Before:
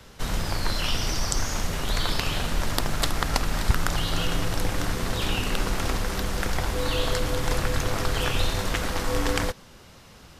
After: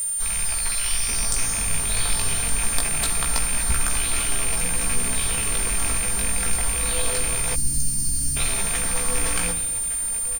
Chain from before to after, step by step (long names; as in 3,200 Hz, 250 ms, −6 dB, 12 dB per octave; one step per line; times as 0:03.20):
loose part that buzzes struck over −26 dBFS, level −14 dBFS
notch filter 2,800 Hz, Q 10
single-tap delay 1,168 ms −13 dB
chorus effect 0.24 Hz, delay 15 ms, depth 4.6 ms
parametric band 270 Hz −13 dB 2.7 octaves, from 0:01.08 −3.5 dB
rectangular room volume 3,300 cubic metres, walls furnished, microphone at 1.6 metres
steady tone 9,000 Hz −28 dBFS
0:07.55–0:08.36: gain on a spectral selection 330–4,100 Hz −25 dB
background noise white −47 dBFS
high-shelf EQ 9,100 Hz +10 dB